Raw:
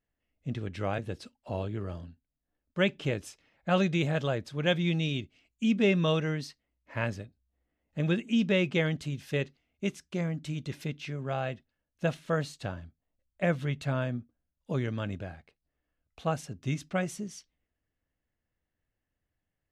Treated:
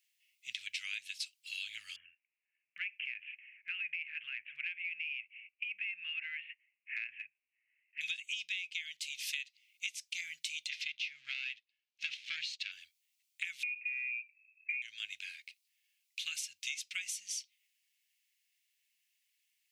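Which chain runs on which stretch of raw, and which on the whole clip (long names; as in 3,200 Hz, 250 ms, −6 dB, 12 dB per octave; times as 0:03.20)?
0:01.96–0:08.01: Butterworth low-pass 2,800 Hz 96 dB per octave + downward compressor 10 to 1, threshold −32 dBFS + parametric band 1,700 Hz +5 dB 0.81 octaves
0:10.69–0:12.72: leveller curve on the samples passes 2 + high-frequency loss of the air 200 metres
0:13.63–0:14.82: voice inversion scrambler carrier 2,600 Hz + downward compressor 4 to 1, threshold −33 dBFS
whole clip: elliptic high-pass filter 2,300 Hz, stop band 60 dB; downward compressor 12 to 1, threshold −52 dBFS; level +16 dB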